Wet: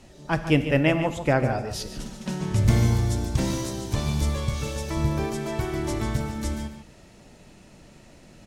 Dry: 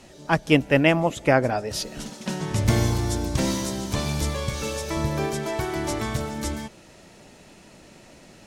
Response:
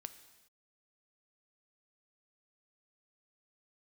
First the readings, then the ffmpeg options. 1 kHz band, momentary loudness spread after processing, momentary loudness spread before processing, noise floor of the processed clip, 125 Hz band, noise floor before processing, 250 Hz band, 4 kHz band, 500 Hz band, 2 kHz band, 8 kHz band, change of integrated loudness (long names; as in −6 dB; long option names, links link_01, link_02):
−3.5 dB, 11 LU, 11 LU, −51 dBFS, +2.0 dB, −50 dBFS, −1.0 dB, −4.0 dB, −3.0 dB, −4.0 dB, −4.0 dB, −1.0 dB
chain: -filter_complex "[0:a]lowshelf=frequency=150:gain=10,asplit=2[link_01][link_02];[link_02]adelay=145.8,volume=-10dB,highshelf=frequency=4000:gain=-3.28[link_03];[link_01][link_03]amix=inputs=2:normalize=0[link_04];[1:a]atrim=start_sample=2205,atrim=end_sample=6615,asetrate=40131,aresample=44100[link_05];[link_04][link_05]afir=irnorm=-1:irlink=0"